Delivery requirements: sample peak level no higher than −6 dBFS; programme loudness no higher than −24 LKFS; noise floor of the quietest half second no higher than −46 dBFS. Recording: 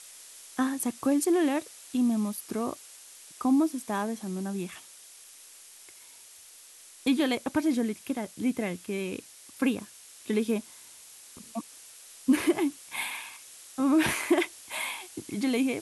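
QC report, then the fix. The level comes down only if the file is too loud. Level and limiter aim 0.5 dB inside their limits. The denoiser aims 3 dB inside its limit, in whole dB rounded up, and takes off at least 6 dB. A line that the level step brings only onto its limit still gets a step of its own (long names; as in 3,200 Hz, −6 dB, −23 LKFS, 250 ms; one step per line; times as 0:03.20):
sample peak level −12.5 dBFS: in spec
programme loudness −29.5 LKFS: in spec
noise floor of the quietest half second −52 dBFS: in spec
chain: no processing needed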